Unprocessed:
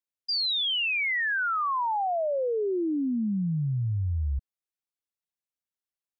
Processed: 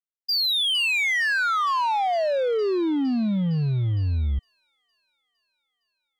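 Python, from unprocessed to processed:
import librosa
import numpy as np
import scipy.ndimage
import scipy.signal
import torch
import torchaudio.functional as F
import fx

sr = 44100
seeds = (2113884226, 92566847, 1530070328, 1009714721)

y = fx.echo_wet_highpass(x, sr, ms=460, feedback_pct=77, hz=3500.0, wet_db=-16)
y = fx.power_curve(y, sr, exponent=1.4)
y = y * 10.0 ** (5.5 / 20.0)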